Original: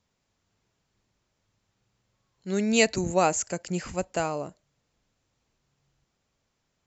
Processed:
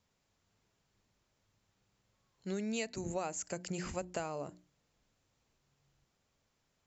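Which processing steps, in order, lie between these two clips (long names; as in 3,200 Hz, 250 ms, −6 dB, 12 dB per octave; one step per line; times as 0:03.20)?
mains-hum notches 60/120/180/240/300/360 Hz
downward compressor 6 to 1, threshold −33 dBFS, peak gain reduction 16.5 dB
level −2 dB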